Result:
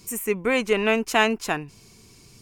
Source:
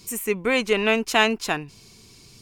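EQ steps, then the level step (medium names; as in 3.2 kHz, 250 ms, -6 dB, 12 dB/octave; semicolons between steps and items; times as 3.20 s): peaking EQ 3.9 kHz -6 dB 0.91 oct; 0.0 dB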